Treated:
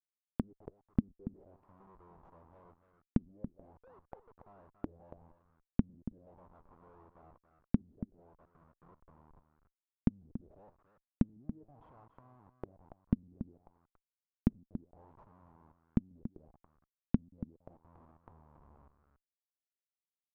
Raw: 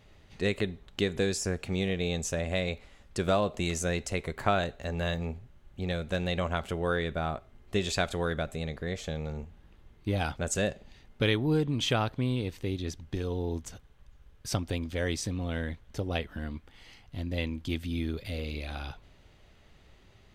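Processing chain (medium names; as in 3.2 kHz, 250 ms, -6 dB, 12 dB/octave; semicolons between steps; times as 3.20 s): 3.77–4.31 s: formants replaced by sine waves; band-stop 910 Hz, Q 14; in parallel at -1.5 dB: compression 10:1, threshold -39 dBFS, peak gain reduction 18 dB; on the sum: Schmitt trigger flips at -29 dBFS; inverted gate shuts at -41 dBFS, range -42 dB; 7.82–8.85 s: valve stage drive 73 dB, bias 0.55; on a send: delay 282 ms -10.5 dB; on the sum: touch-sensitive low-pass 230–1500 Hz down, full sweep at -56.5 dBFS; trim +11.5 dB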